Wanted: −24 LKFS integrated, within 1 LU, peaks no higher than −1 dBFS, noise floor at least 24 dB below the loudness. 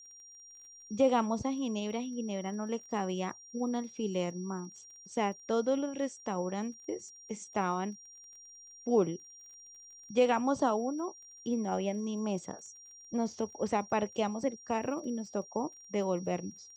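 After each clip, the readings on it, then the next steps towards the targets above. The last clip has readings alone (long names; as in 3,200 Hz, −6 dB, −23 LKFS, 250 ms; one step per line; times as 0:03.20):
crackle rate 25 per second; interfering tone 5,700 Hz; level of the tone −51 dBFS; integrated loudness −34.0 LKFS; sample peak −14.5 dBFS; target loudness −24.0 LKFS
→ click removal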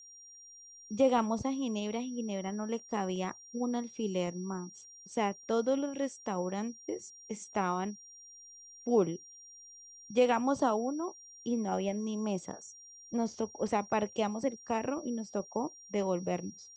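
crackle rate 0 per second; interfering tone 5,700 Hz; level of the tone −51 dBFS
→ notch filter 5,700 Hz, Q 30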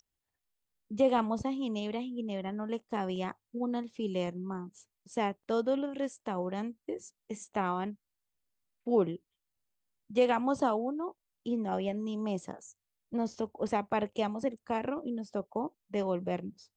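interfering tone none found; integrated loudness −34.0 LKFS; sample peak −14.5 dBFS; target loudness −24.0 LKFS
→ level +10 dB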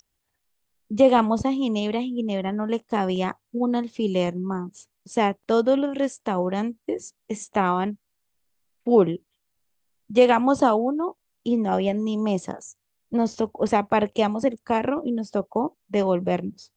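integrated loudness −24.0 LKFS; sample peak −4.5 dBFS; background noise floor −77 dBFS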